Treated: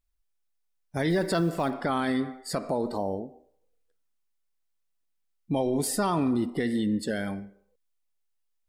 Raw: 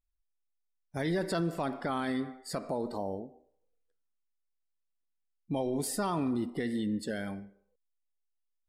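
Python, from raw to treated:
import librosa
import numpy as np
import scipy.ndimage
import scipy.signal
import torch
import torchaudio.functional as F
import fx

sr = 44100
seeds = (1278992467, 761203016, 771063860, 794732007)

y = fx.block_float(x, sr, bits=7, at=(1.1, 1.71))
y = y * 10.0 ** (5.5 / 20.0)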